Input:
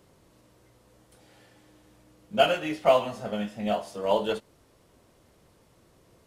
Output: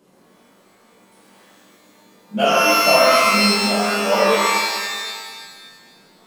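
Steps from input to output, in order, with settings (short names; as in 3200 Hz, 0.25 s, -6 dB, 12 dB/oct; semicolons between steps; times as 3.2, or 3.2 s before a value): resonant low shelf 140 Hz -12 dB, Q 3; reverb removal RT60 1.2 s; shimmer reverb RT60 1.6 s, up +12 st, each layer -2 dB, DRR -7.5 dB; gain -1.5 dB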